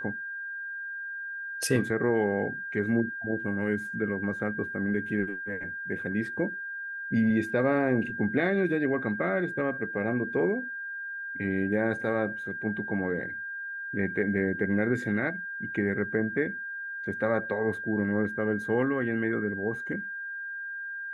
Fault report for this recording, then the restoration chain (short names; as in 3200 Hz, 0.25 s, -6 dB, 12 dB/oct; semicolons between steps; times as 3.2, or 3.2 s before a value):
tone 1600 Hz -34 dBFS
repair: notch 1600 Hz, Q 30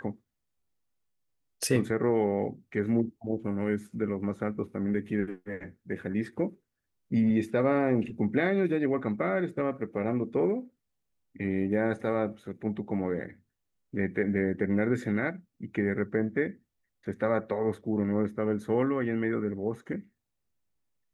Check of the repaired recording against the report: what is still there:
none